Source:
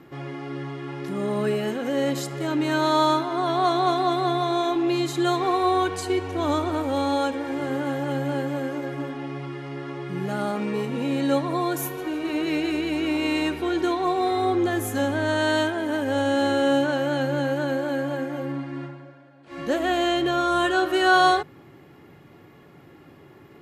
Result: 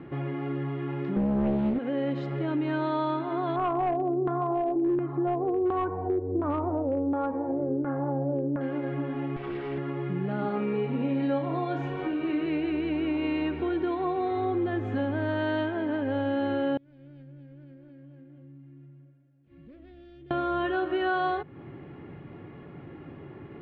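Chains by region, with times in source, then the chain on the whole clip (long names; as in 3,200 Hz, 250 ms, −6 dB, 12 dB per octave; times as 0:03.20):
0:01.16–0:01.79: parametric band 210 Hz +11.5 dB 1.7 octaves + highs frequency-modulated by the lows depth 0.92 ms
0:03.56–0:08.61: high-frequency loss of the air 390 metres + auto-filter low-pass saw down 1.4 Hz 350–1,500 Hz + hard clipping −14.5 dBFS
0:09.36–0:09.78: lower of the sound and its delayed copy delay 2.6 ms + high-shelf EQ 4,700 Hz +6.5 dB + notch filter 6,200 Hz, Q 8.8
0:10.41–0:12.46: comb filter 7.2 ms, depth 46% + flutter between parallel walls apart 5.8 metres, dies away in 0.3 s
0:16.77–0:20.31: phase distortion by the signal itself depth 0.16 ms + guitar amp tone stack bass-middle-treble 10-0-1 + downward compressor 3 to 1, threshold −54 dBFS
whole clip: low-pass filter 3,100 Hz 24 dB per octave; low-shelf EQ 470 Hz +7.5 dB; downward compressor 2.5 to 1, threshold −30 dBFS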